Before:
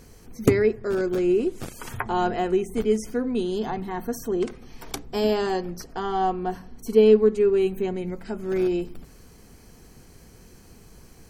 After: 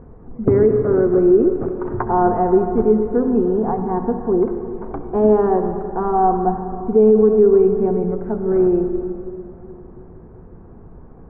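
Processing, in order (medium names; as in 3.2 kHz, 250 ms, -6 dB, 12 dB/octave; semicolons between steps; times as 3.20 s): inverse Chebyshev low-pass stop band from 5.1 kHz, stop band 70 dB; reverberation RT60 3.1 s, pre-delay 58 ms, DRR 7 dB; loudness maximiser +12 dB; trim -4 dB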